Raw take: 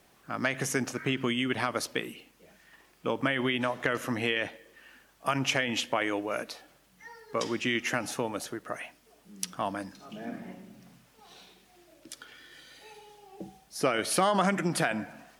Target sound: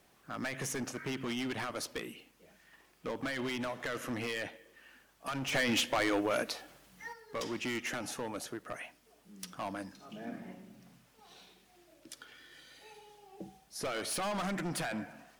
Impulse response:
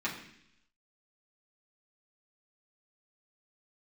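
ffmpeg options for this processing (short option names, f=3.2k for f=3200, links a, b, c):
-filter_complex "[0:a]asoftclip=type=hard:threshold=-28.5dB,asplit=3[a][b][c];[a]afade=t=out:st=5.52:d=0.02[d];[b]acontrast=81,afade=t=in:st=5.52:d=0.02,afade=t=out:st=7.12:d=0.02[e];[c]afade=t=in:st=7.12:d=0.02[f];[d][e][f]amix=inputs=3:normalize=0,volume=-4dB"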